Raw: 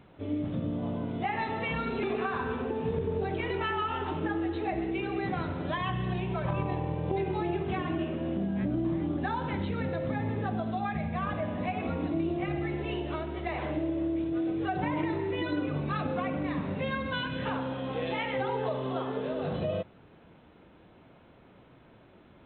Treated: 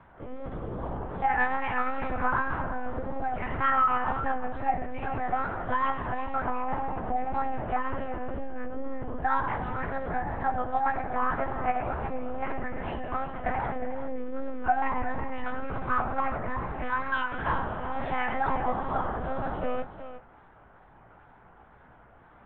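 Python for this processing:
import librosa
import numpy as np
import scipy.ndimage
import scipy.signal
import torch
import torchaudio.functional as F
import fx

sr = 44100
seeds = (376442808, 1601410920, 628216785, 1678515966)

y = scipy.signal.sosfilt(scipy.signal.butter(2, 78.0, 'highpass', fs=sr, output='sos'), x)
y = fx.band_shelf(y, sr, hz=1100.0, db=11.0, octaves=1.7)
y = fx.hum_notches(y, sr, base_hz=60, count=5)
y = fx.lpc_monotone(y, sr, seeds[0], pitch_hz=260.0, order=8)
y = scipy.signal.sosfilt(scipy.signal.butter(2, 2700.0, 'lowpass', fs=sr, output='sos'), y)
y = fx.doubler(y, sr, ms=17.0, db=-11)
y = y + 10.0 ** (-12.0 / 20.0) * np.pad(y, (int(362 * sr / 1000.0), 0))[:len(y)]
y = fx.wow_flutter(y, sr, seeds[1], rate_hz=2.1, depth_cents=67.0)
y = F.gain(torch.from_numpy(y), -3.0).numpy()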